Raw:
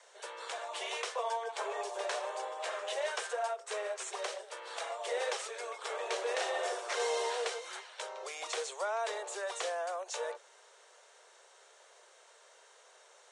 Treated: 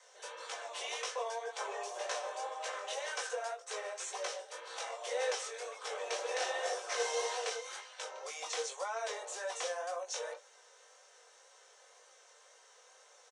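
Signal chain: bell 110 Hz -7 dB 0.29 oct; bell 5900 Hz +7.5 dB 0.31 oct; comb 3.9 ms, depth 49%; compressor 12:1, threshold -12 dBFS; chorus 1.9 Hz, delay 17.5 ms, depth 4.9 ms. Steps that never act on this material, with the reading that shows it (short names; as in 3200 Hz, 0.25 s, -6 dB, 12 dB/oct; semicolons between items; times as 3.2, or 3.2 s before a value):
bell 110 Hz: input band starts at 340 Hz; compressor, threshold -12 dBFS: input peak -19.5 dBFS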